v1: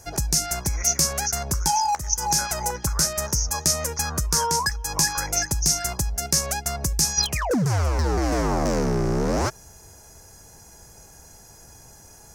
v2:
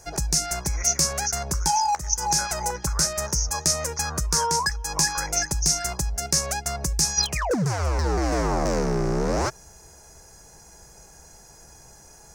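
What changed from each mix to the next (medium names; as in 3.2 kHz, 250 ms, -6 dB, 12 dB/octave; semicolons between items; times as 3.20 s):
master: add graphic EQ with 31 bands 100 Hz -11 dB, 250 Hz -6 dB, 3.15 kHz -3 dB, 12.5 kHz -10 dB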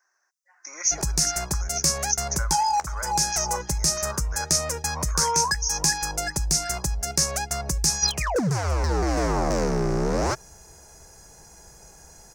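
background: entry +0.85 s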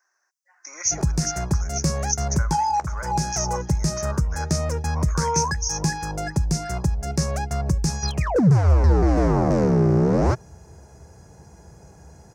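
background: add tilt EQ -3.5 dB/octave; master: add high-pass 76 Hz 24 dB/octave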